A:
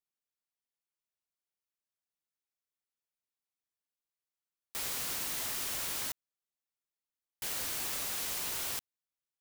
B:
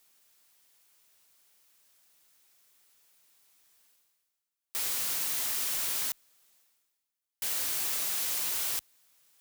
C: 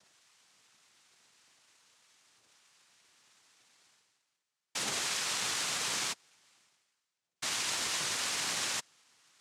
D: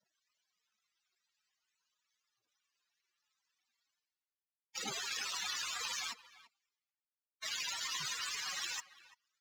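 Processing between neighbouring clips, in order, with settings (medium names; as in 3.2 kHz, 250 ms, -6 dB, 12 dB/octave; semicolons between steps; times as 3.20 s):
tilt EQ +1.5 dB/octave; reverse; upward compressor, threshold -46 dBFS; reverse
phaser 0.41 Hz, delay 2.8 ms, feedback 65%; one-sided clip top -31.5 dBFS; noise-vocoded speech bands 2; trim +3 dB
loudest bins only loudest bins 32; speakerphone echo 340 ms, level -11 dB; power-law waveshaper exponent 1.4; trim +5 dB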